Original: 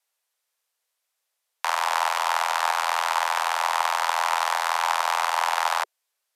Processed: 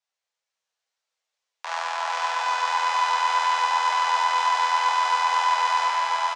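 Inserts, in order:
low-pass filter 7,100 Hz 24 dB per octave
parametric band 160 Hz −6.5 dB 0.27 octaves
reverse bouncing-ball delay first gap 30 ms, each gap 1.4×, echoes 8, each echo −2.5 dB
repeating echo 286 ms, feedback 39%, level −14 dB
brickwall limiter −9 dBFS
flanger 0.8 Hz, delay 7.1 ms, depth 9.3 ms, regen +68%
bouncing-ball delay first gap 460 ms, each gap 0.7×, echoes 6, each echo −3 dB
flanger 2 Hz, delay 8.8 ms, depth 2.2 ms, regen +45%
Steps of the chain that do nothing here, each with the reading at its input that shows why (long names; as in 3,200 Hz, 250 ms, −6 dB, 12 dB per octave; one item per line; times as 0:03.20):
parametric band 160 Hz: nothing at its input below 400 Hz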